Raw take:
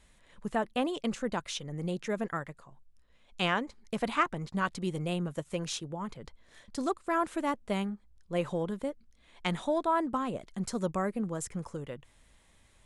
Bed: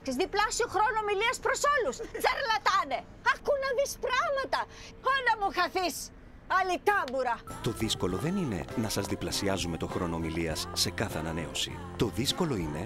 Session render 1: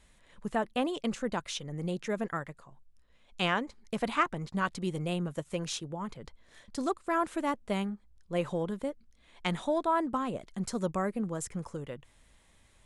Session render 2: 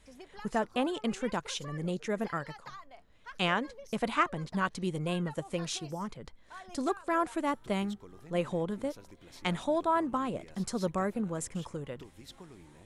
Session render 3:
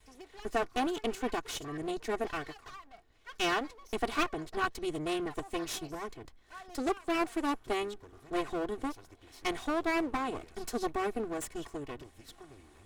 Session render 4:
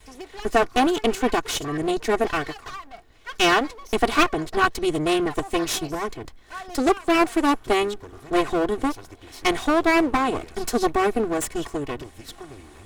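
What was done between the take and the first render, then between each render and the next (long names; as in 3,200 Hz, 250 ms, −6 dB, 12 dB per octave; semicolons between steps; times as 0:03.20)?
no processing that can be heard
mix in bed −21.5 dB
lower of the sound and its delayed copy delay 2.7 ms
level +12 dB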